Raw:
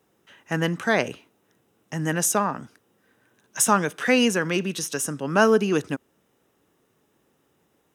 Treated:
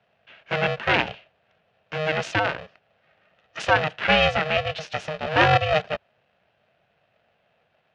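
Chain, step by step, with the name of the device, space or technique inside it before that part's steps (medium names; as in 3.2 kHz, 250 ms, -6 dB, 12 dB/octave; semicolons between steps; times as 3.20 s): ring modulator pedal into a guitar cabinet (polarity switched at an audio rate 310 Hz; cabinet simulation 100–4100 Hz, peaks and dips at 270 Hz -4 dB, 650 Hz +6 dB, 1.1 kHz -4 dB, 1.6 kHz +5 dB, 2.7 kHz +8 dB); trim -1 dB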